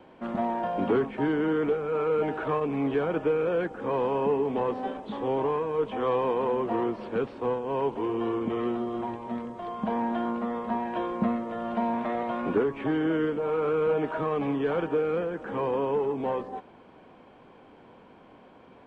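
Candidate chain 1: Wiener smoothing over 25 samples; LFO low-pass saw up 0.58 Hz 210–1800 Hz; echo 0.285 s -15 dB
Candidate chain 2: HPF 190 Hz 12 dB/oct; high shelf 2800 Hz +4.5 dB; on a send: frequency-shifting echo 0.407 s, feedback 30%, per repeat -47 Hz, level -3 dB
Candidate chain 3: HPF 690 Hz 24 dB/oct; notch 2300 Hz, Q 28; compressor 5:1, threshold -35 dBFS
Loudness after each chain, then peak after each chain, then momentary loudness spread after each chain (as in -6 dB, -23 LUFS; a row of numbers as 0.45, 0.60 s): -26.5, -27.0, -39.5 LUFS; -9.5, -12.5, -26.0 dBFS; 8, 6, 15 LU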